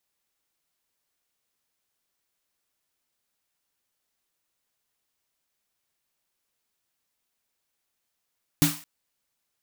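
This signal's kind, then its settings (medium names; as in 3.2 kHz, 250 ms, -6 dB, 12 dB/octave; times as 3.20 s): snare drum length 0.22 s, tones 160 Hz, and 290 Hz, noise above 710 Hz, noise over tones -4 dB, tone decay 0.25 s, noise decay 0.42 s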